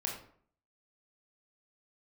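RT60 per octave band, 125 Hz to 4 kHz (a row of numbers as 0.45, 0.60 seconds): 0.60, 0.60, 0.55, 0.55, 0.45, 0.35 seconds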